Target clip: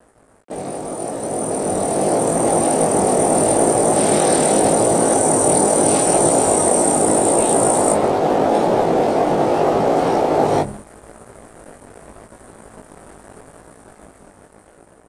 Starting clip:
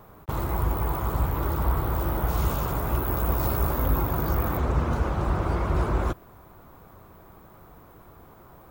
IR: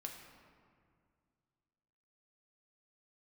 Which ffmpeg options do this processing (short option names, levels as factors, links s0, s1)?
-filter_complex "[0:a]bandreject=f=60:t=h:w=6,bandreject=f=120:t=h:w=6,bandreject=f=180:t=h:w=6,bandreject=f=240:t=h:w=6,bandreject=f=300:t=h:w=6,bandreject=f=360:t=h:w=6,aecho=1:1:93:0.0794,afftfilt=real='re*lt(hypot(re,im),0.112)':imag='im*lt(hypot(re,im),0.112)':win_size=1024:overlap=0.75,acrossover=split=360|1800[s0][s1][s2];[s1]acontrast=84[s3];[s0][s3][s2]amix=inputs=3:normalize=0,lowshelf=f=72:g=-5.5,aeval=exprs='sgn(val(0))*max(abs(val(0))-0.00531,0)':c=same,asetrate=25442,aresample=44100,dynaudnorm=f=520:g=7:m=4.47,flanger=delay=17.5:depth=2.6:speed=0.8,adynamicequalizer=threshold=0.01:dfrequency=6300:dqfactor=0.7:tfrequency=6300:tqfactor=0.7:attack=5:release=100:ratio=0.375:range=1.5:mode=boostabove:tftype=highshelf,volume=1.78"